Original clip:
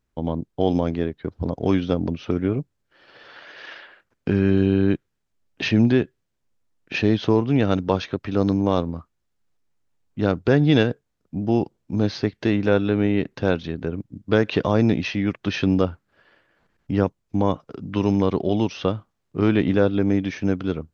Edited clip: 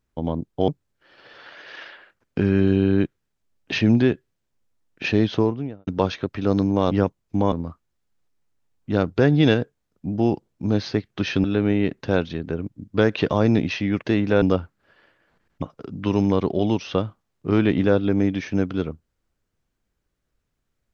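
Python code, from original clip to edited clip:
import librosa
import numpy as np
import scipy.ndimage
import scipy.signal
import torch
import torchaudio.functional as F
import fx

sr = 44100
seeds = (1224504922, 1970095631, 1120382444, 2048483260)

y = fx.studio_fade_out(x, sr, start_s=7.18, length_s=0.59)
y = fx.edit(y, sr, fx.cut(start_s=0.68, length_s=1.9),
    fx.swap(start_s=12.39, length_s=0.39, other_s=15.37, other_length_s=0.34),
    fx.move(start_s=16.91, length_s=0.61, to_s=8.81), tone=tone)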